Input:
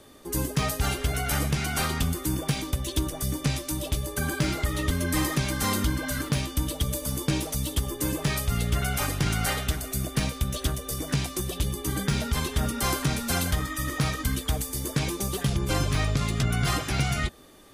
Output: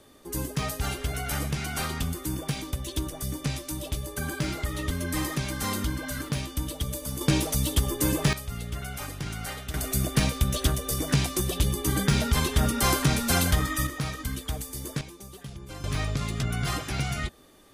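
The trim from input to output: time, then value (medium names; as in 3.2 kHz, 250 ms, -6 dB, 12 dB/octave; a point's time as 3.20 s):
-3.5 dB
from 7.21 s +3 dB
from 8.33 s -8.5 dB
from 9.74 s +3 dB
from 13.87 s -5 dB
from 15.01 s -15 dB
from 15.84 s -3.5 dB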